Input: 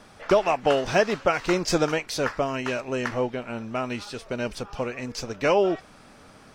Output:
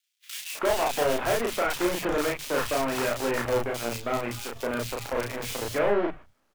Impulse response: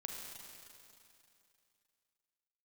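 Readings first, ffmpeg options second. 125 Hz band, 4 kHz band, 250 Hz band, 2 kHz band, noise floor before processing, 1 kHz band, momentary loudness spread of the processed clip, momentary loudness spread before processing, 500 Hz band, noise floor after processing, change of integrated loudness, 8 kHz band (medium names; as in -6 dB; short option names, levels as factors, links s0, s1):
-3.5 dB, -0.5 dB, -3.0 dB, -1.5 dB, -51 dBFS, -2.0 dB, 7 LU, 11 LU, -2.5 dB, -70 dBFS, -2.0 dB, +2.5 dB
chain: -filter_complex "[0:a]aeval=exprs='(tanh(14.1*val(0)+0.3)-tanh(0.3))/14.1':c=same,equalizer=f=170:t=o:w=0.5:g=-10.5,aresample=8000,aresample=44100,acrusher=bits=6:dc=4:mix=0:aa=0.000001,asplit=2[s0][s1];[s1]adelay=34,volume=0.794[s2];[s0][s2]amix=inputs=2:normalize=0,agate=range=0.1:threshold=0.00562:ratio=16:detection=peak,acrossover=split=160|2600[s3][s4][s5];[s4]adelay=320[s6];[s3]adelay=390[s7];[s7][s6][s5]amix=inputs=3:normalize=0,volume=1.19"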